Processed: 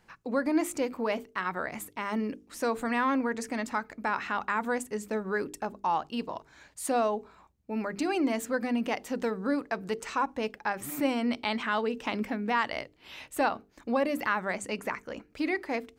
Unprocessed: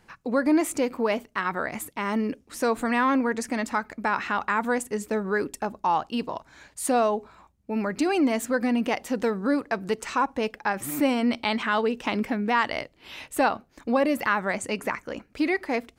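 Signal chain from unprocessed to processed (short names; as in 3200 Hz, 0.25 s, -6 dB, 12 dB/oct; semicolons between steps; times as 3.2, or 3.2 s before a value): bell 9900 Hz -3 dB 0.25 oct; notches 50/100/150/200/250/300/350/400/450 Hz; gain -4.5 dB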